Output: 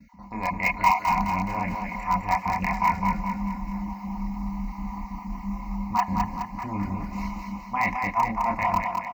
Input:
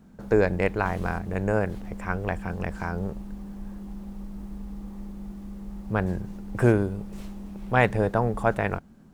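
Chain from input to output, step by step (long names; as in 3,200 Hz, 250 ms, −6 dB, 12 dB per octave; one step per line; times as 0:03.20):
time-frequency cells dropped at random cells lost 26%
noise gate with hold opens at −50 dBFS
high-pass filter 45 Hz 12 dB per octave
parametric band 8,400 Hz −12.5 dB 0.21 octaves
comb filter 4.1 ms, depth 57%
reversed playback
downward compressor 12 to 1, threshold −30 dBFS, peak gain reduction 16 dB
reversed playback
hollow resonant body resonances 980/2,100 Hz, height 16 dB, ringing for 20 ms
multi-voice chorus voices 4, 0.98 Hz, delay 29 ms, depth 3 ms
in parallel at −11.5 dB: wrap-around overflow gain 22 dB
on the sum: phaser with its sweep stopped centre 2,300 Hz, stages 8
feedback echo with a high-pass in the loop 210 ms, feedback 54%, high-pass 290 Hz, level −4 dB
level +7.5 dB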